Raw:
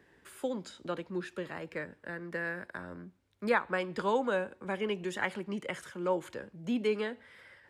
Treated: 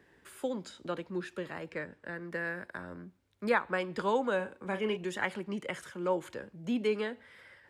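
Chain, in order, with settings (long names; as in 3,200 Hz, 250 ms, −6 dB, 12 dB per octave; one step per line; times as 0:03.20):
0:01.71–0:02.15: low-pass filter 8,800 Hz
0:04.36–0:04.97: double-tracking delay 37 ms −9.5 dB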